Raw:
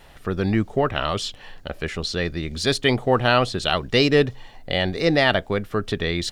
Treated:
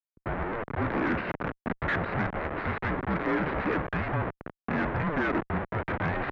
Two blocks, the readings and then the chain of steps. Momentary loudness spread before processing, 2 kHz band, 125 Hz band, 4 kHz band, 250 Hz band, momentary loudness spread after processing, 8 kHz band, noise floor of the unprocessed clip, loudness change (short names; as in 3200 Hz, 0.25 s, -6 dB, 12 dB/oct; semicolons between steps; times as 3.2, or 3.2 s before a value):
10 LU, -5.5 dB, -6.5 dB, -24.0 dB, -6.5 dB, 6 LU, under -30 dB, -46 dBFS, -8.5 dB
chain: minimum comb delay 0.4 ms; HPF 190 Hz 12 dB/oct; compressor 6:1, threshold -21 dBFS, peak gain reduction 8.5 dB; limiter -16 dBFS, peak gain reduction 7.5 dB; Schmitt trigger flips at -40 dBFS; gate -44 dBFS, range -33 dB; mistuned SSB -320 Hz 450–2300 Hz; added harmonics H 4 -21 dB, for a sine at -23.5 dBFS; gain +7 dB